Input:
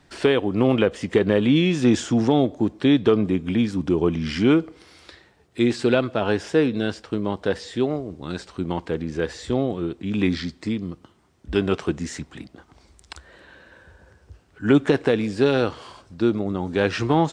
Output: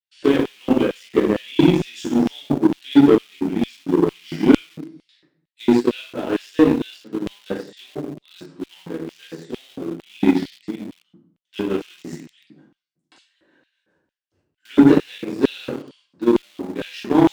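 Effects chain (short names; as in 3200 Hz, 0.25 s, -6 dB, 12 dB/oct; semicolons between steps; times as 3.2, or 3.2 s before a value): gate -48 dBFS, range -22 dB; shoebox room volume 110 m³, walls mixed, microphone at 2 m; in parallel at -4 dB: sample gate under -16.5 dBFS; on the sum: bell 150 Hz +13 dB 0.55 oct; LFO high-pass square 2.2 Hz 290–3000 Hz; added harmonics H 7 -22 dB, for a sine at 13 dBFS; gain -13.5 dB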